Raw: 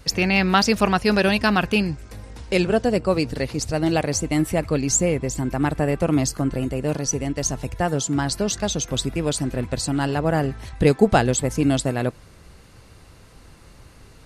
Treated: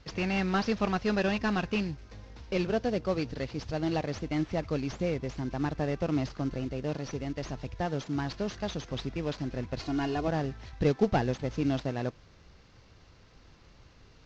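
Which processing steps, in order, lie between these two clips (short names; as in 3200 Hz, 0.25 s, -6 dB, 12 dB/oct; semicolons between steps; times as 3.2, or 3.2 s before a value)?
CVSD 32 kbps; 9.8–10.28 comb 2.8 ms, depth 76%; gain -9 dB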